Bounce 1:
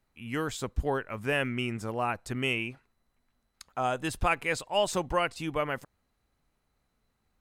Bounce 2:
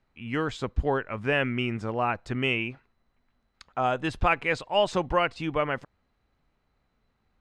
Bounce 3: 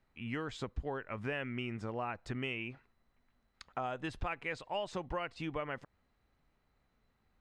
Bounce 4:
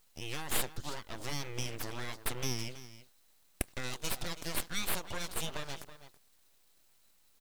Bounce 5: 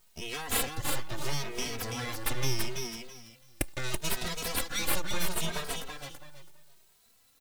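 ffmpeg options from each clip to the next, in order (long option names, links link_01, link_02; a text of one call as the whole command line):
ffmpeg -i in.wav -af "lowpass=3900,volume=3.5dB" out.wav
ffmpeg -i in.wav -af "equalizer=frequency=1900:width_type=o:width=0.2:gain=2.5,acompressor=threshold=-33dB:ratio=4,volume=-3dB" out.wav
ffmpeg -i in.wav -filter_complex "[0:a]aexciter=amount=10.5:drive=7.9:freq=3300,asplit=2[link_01][link_02];[link_02]adelay=326.5,volume=-13dB,highshelf=frequency=4000:gain=-7.35[link_03];[link_01][link_03]amix=inputs=2:normalize=0,aeval=exprs='abs(val(0))':channel_layout=same" out.wav
ffmpeg -i in.wav -filter_complex "[0:a]aecho=1:1:332|664|996:0.562|0.107|0.0203,asplit=2[link_01][link_02];[link_02]adelay=2.8,afreqshift=0.75[link_03];[link_01][link_03]amix=inputs=2:normalize=1,volume=7dB" out.wav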